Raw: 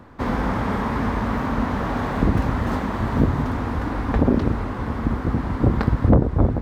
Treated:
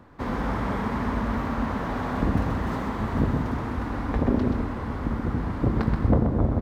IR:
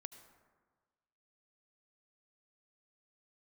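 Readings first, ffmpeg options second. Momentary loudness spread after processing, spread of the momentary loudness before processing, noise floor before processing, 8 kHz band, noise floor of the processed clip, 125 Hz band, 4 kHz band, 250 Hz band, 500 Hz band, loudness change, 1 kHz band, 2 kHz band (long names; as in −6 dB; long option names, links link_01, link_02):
7 LU, 7 LU, −30 dBFS, can't be measured, −31 dBFS, −4.5 dB, −4.5 dB, −4.0 dB, −4.5 dB, −4.0 dB, −4.0 dB, −4.5 dB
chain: -filter_complex "[0:a]aecho=1:1:128:0.531[link_01];[1:a]atrim=start_sample=2205[link_02];[link_01][link_02]afir=irnorm=-1:irlink=0"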